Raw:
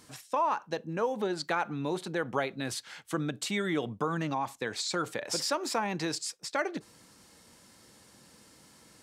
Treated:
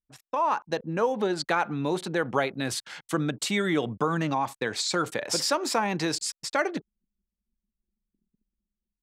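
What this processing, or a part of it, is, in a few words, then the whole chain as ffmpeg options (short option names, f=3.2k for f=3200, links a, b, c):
voice memo with heavy noise removal: -af "anlmdn=0.00631,dynaudnorm=f=110:g=7:m=9.5dB,anlmdn=0.0251,volume=-4.5dB"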